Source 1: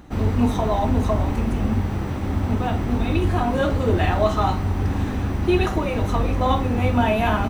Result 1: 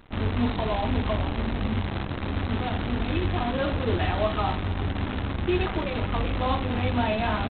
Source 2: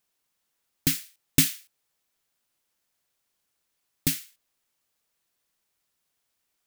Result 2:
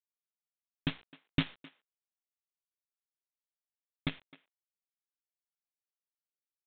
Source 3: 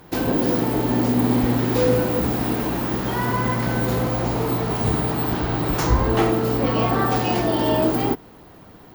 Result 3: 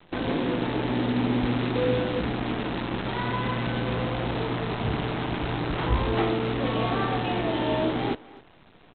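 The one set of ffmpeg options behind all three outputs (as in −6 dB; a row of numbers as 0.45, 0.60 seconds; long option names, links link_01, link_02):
-filter_complex "[0:a]aresample=8000,acrusher=bits=5:dc=4:mix=0:aa=0.000001,aresample=44100,asplit=2[link_01][link_02];[link_02]adelay=260,highpass=300,lowpass=3400,asoftclip=type=hard:threshold=-13.5dB,volume=-19dB[link_03];[link_01][link_03]amix=inputs=2:normalize=0,volume=-6dB"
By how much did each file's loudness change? −5.5, −12.0, −6.0 LU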